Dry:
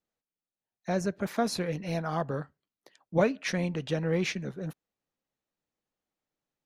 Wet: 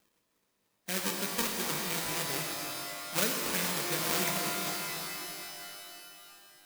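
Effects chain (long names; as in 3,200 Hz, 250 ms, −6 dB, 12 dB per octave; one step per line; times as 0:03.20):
loose part that buzzes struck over −32 dBFS, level −22 dBFS
upward compression, threshold −44 dBFS
low-pass that shuts in the quiet parts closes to 570 Hz, open at −31 dBFS
inverse Chebyshev low-pass filter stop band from 4,200 Hz, stop band 40 dB
parametric band 720 Hz −11.5 dB 1.1 octaves
sample-and-hold swept by an LFO 36×, swing 160% 3 Hz
spectral tilt +3.5 dB per octave
reverb with rising layers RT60 3 s, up +12 semitones, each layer −2 dB, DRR 1 dB
level −1.5 dB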